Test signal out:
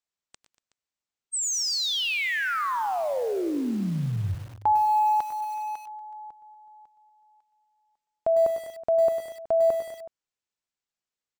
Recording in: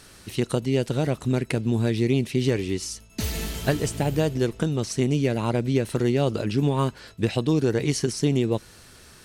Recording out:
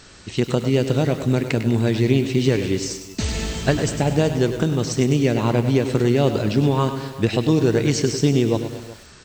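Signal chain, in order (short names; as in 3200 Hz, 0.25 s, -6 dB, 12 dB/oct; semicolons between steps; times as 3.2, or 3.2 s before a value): brick-wall FIR low-pass 8400 Hz; on a send: tapped delay 0.118/0.237/0.372 s -14.5/-19/-18.5 dB; on the sum: lo-fi delay 0.1 s, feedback 55%, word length 7-bit, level -10.5 dB; gain +4 dB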